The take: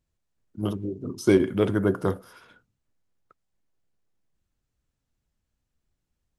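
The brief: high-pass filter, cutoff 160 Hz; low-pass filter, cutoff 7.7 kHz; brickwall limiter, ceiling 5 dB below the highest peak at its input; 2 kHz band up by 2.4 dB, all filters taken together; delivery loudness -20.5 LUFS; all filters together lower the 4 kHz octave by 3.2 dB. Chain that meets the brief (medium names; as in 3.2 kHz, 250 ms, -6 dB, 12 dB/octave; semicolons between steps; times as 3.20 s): high-pass 160 Hz; low-pass 7.7 kHz; peaking EQ 2 kHz +4.5 dB; peaking EQ 4 kHz -6 dB; trim +7.5 dB; peak limiter -5.5 dBFS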